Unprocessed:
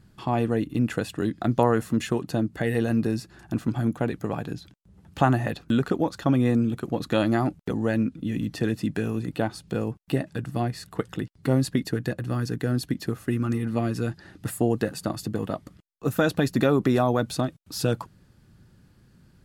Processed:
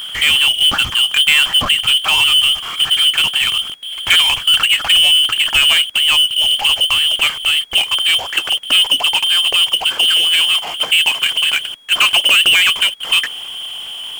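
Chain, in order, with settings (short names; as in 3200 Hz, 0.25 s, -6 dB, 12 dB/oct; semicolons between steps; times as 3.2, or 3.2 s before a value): speed glide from 123% -> 151%; inverted band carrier 3300 Hz; power-law curve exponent 0.5; gain +3.5 dB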